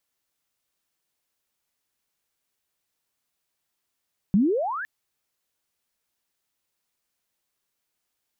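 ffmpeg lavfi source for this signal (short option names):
-f lavfi -i "aevalsrc='pow(10,(-14.5-15*t/0.51)/20)*sin(2*PI*180*0.51/log(1800/180)*(exp(log(1800/180)*t/0.51)-1))':d=0.51:s=44100"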